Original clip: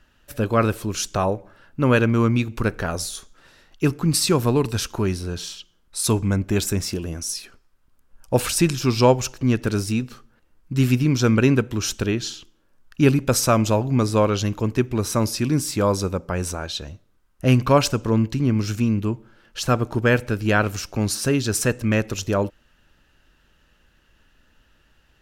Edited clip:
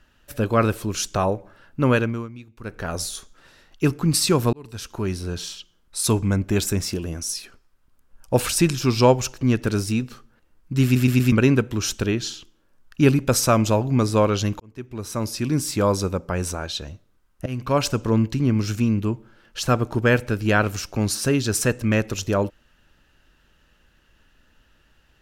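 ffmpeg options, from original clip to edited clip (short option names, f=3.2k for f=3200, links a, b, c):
-filter_complex "[0:a]asplit=10[a][b][c][d][e][f][g][h][i][j];[a]atrim=end=2.28,asetpts=PTS-STARTPTS,afade=t=out:st=1.86:d=0.42:silence=0.105925[k];[b]atrim=start=2.28:end=2.59,asetpts=PTS-STARTPTS,volume=-19.5dB[l];[c]atrim=start=2.59:end=4.53,asetpts=PTS-STARTPTS,afade=t=in:d=0.42:silence=0.105925,afade=t=out:st=1.936:d=0.004:c=hsin[m];[d]atrim=start=4.53:end=10.962,asetpts=PTS-STARTPTS,afade=t=in:d=0.76[n];[e]atrim=start=10.838:end=10.962[o];[f]atrim=start=10.838:end=10.962[p];[g]atrim=start=10.838:end=10.962[q];[h]atrim=start=11.318:end=14.6,asetpts=PTS-STARTPTS,afade=t=out:st=3.278:d=0.004:c=hsin[r];[i]atrim=start=14.6:end=17.46,asetpts=PTS-STARTPTS,afade=t=in:d=1.1,afade=t=out:st=2.856:d=0.004:c=hsin:silence=0.0944061[s];[j]atrim=start=17.46,asetpts=PTS-STARTPTS,afade=t=in:d=0.52:silence=0.0944061[t];[k][l][m][n]concat=n=4:v=0:a=1[u];[u][o]acrossfade=d=0.004:c1=hsin:c2=hsin[v];[v][p]acrossfade=d=0.004:c1=hsin:c2=hsin[w];[w][q]acrossfade=d=0.004:c1=hsin:c2=hsin[x];[r][s][t]concat=n=3:v=0:a=1[y];[x][y]acrossfade=d=0.004:c1=hsin:c2=hsin"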